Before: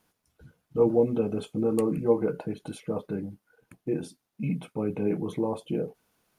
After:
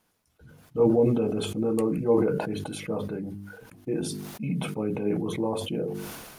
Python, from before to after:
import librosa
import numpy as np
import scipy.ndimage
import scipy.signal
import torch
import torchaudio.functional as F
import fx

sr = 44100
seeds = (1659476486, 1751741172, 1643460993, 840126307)

y = fx.hum_notches(x, sr, base_hz=50, count=9)
y = fx.sustainer(y, sr, db_per_s=37.0)